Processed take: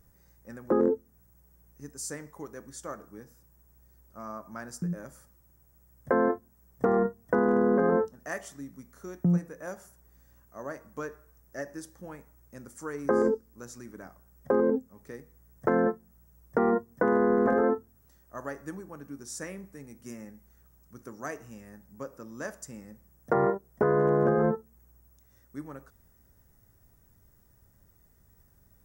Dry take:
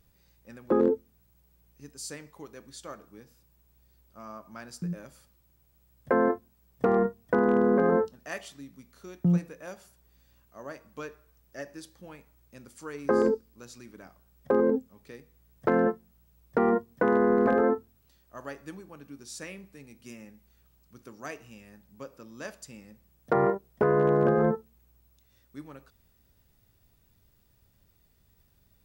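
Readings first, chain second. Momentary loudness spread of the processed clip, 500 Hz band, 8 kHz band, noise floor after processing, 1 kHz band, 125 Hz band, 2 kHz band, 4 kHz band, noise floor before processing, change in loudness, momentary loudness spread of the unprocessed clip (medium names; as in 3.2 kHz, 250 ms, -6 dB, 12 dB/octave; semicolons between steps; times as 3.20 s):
22 LU, -1.0 dB, +3.0 dB, -63 dBFS, -1.0 dB, -0.5 dB, -0.5 dB, no reading, -66 dBFS, -2.0 dB, 22 LU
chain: high-order bell 3.3 kHz -12 dB 1.2 oct; in parallel at 0 dB: compression, threshold -35 dBFS, peak gain reduction 15.5 dB; on the sum: trim -2.5 dB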